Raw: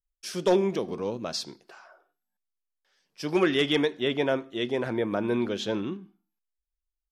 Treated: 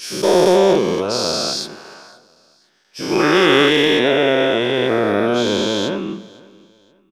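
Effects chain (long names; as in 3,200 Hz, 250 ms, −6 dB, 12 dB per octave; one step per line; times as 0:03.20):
every bin's largest magnitude spread in time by 480 ms
repeating echo 516 ms, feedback 31%, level −23 dB
level +3.5 dB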